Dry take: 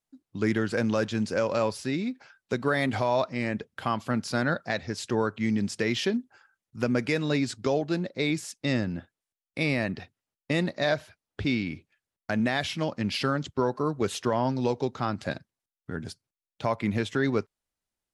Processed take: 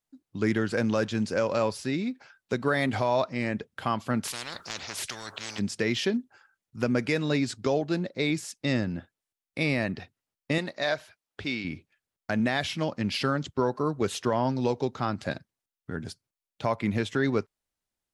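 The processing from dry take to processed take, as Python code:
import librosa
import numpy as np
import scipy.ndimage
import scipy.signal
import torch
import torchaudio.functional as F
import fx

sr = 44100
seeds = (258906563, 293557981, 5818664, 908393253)

y = fx.spectral_comp(x, sr, ratio=10.0, at=(4.23, 5.58), fade=0.02)
y = fx.low_shelf(y, sr, hz=330.0, db=-11.5, at=(10.58, 11.65))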